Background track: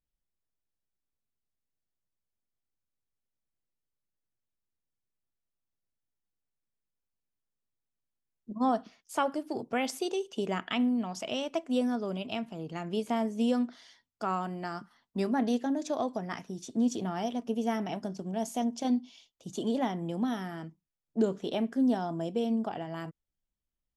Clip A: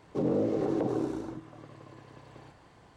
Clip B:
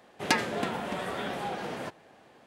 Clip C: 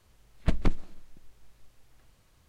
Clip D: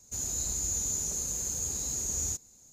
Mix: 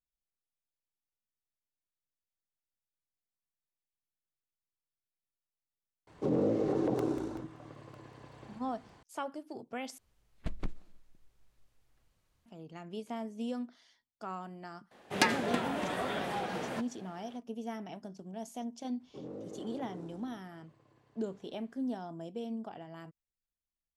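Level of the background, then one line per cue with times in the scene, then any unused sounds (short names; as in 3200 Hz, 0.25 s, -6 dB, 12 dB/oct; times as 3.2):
background track -9.5 dB
6.07 add A -1.5 dB + crackling interface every 0.19 s, samples 64, repeat, from 0.92
9.98 replace with C -12 dB
14.91 add B -1.5 dB
18.99 add A -16.5 dB, fades 0.02 s
not used: D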